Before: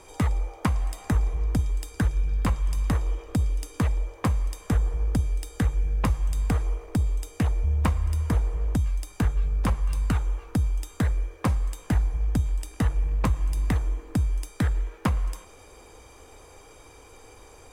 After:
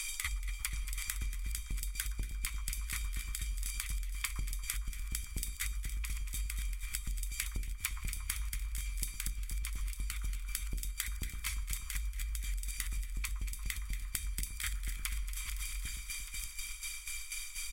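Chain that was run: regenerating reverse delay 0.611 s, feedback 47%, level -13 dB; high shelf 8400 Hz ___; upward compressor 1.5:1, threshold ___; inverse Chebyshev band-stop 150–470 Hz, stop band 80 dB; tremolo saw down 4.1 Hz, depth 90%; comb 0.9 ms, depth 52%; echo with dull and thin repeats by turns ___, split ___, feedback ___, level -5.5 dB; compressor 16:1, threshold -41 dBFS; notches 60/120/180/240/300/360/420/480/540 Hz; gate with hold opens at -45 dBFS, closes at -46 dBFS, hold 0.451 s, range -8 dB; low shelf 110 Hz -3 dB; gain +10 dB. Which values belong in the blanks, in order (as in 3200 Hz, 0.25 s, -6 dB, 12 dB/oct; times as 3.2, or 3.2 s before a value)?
+10 dB, -35 dBFS, 0.116 s, 1300 Hz, 73%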